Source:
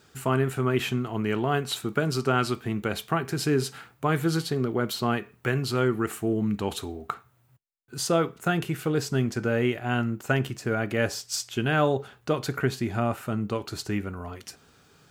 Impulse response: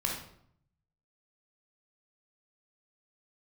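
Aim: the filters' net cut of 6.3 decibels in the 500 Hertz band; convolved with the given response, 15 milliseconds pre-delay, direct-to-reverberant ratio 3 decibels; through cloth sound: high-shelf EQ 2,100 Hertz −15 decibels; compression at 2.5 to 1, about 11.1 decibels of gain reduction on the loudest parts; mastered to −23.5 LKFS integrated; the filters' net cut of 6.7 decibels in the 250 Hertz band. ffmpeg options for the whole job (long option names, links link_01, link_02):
-filter_complex "[0:a]equalizer=frequency=250:width_type=o:gain=-7.5,equalizer=frequency=500:width_type=o:gain=-4.5,acompressor=threshold=-39dB:ratio=2.5,asplit=2[link_01][link_02];[1:a]atrim=start_sample=2205,adelay=15[link_03];[link_02][link_03]afir=irnorm=-1:irlink=0,volume=-8.5dB[link_04];[link_01][link_04]amix=inputs=2:normalize=0,highshelf=frequency=2100:gain=-15,volume=15dB"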